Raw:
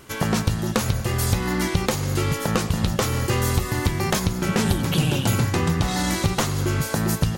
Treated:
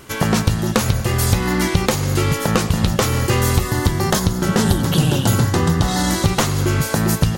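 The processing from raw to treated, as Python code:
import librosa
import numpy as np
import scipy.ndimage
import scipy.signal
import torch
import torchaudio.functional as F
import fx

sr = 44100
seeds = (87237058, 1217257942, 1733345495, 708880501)

y = fx.peak_eq(x, sr, hz=2400.0, db=-9.5, octaves=0.34, at=(3.68, 6.26))
y = y * librosa.db_to_amplitude(5.0)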